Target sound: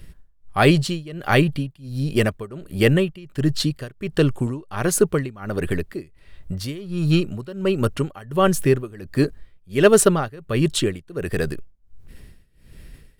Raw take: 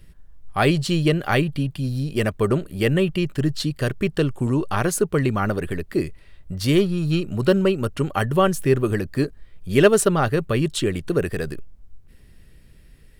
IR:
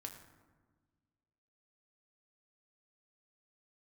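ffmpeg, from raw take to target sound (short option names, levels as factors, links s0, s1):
-af "areverse,acompressor=mode=upward:threshold=0.0141:ratio=2.5,areverse,tremolo=f=1.4:d=0.93,volume=1.58"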